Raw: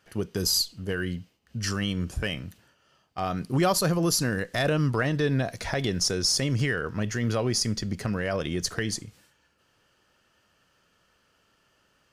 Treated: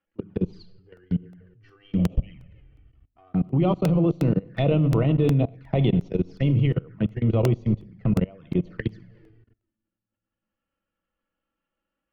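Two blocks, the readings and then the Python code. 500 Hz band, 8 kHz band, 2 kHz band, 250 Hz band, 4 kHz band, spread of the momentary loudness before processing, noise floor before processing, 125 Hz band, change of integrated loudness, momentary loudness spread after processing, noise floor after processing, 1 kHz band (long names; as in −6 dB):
+1.5 dB, below −20 dB, −10.5 dB, +5.0 dB, −15.0 dB, 9 LU, −68 dBFS, +6.0 dB, +2.5 dB, 9 LU, below −85 dBFS, −4.0 dB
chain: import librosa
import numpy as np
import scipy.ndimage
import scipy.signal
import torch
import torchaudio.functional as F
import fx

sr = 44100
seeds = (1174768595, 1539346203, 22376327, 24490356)

y = scipy.signal.sosfilt(scipy.signal.butter(4, 2800.0, 'lowpass', fs=sr, output='sos'), x)
y = fx.low_shelf(y, sr, hz=310.0, db=9.5)
y = fx.hum_notches(y, sr, base_hz=50, count=7)
y = fx.spec_repair(y, sr, seeds[0], start_s=2.0, length_s=0.28, low_hz=230.0, high_hz=1800.0, source='after')
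y = fx.peak_eq(y, sr, hz=84.0, db=-9.5, octaves=0.51)
y = fx.room_shoebox(y, sr, seeds[1], volume_m3=2800.0, walls='mixed', distance_m=0.7)
y = fx.level_steps(y, sr, step_db=23)
y = fx.notch(y, sr, hz=1600.0, q=23.0)
y = fx.env_flanger(y, sr, rest_ms=3.7, full_db=-25.5)
y = fx.buffer_crackle(y, sr, first_s=0.97, period_s=0.36, block=64, kind='repeat')
y = fx.band_widen(y, sr, depth_pct=40)
y = y * librosa.db_to_amplitude(4.0)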